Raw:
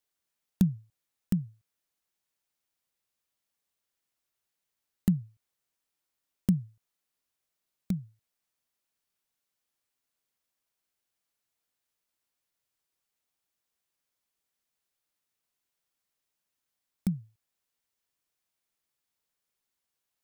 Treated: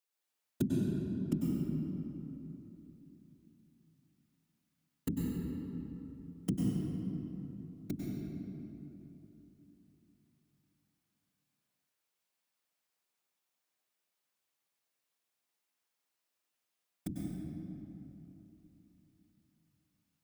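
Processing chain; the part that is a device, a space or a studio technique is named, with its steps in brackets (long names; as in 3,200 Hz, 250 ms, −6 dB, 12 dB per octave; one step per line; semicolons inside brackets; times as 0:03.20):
whispering ghost (random phases in short frames; high-pass filter 280 Hz 6 dB per octave; convolution reverb RT60 3.3 s, pre-delay 92 ms, DRR −4 dB)
0:00.67–0:01.36: low-pass filter 11,000 Hz 12 dB per octave
level −4 dB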